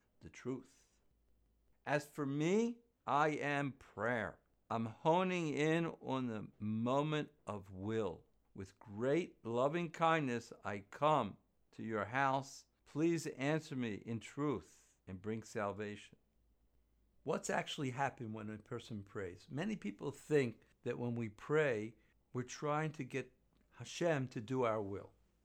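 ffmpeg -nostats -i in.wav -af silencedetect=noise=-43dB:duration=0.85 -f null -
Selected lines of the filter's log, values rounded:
silence_start: 0.59
silence_end: 1.87 | silence_duration: 1.29
silence_start: 15.95
silence_end: 17.27 | silence_duration: 1.32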